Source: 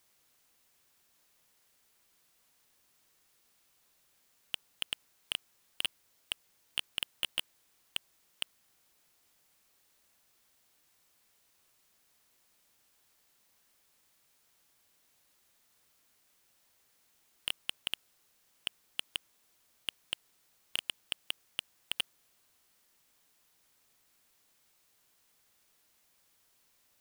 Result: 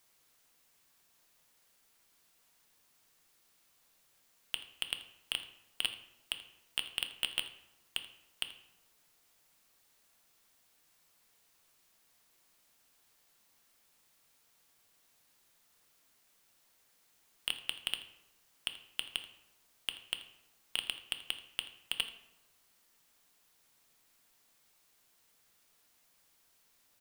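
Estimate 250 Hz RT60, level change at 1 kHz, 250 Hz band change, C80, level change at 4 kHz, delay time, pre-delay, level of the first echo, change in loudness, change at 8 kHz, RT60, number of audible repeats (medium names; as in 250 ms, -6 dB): 1.1 s, +1.0 dB, +0.5 dB, 13.0 dB, +0.5 dB, 82 ms, 4 ms, -18.0 dB, +0.5 dB, +0.5 dB, 1.0 s, 1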